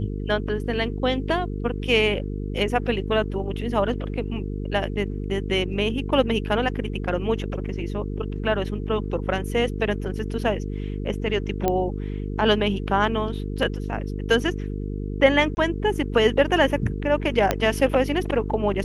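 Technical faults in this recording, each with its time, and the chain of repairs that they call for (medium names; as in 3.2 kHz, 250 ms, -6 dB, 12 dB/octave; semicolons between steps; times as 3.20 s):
buzz 50 Hz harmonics 9 -29 dBFS
11.68 s: pop -9 dBFS
15.55–15.57 s: dropout 20 ms
17.51 s: pop -5 dBFS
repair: de-click; de-hum 50 Hz, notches 9; interpolate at 15.55 s, 20 ms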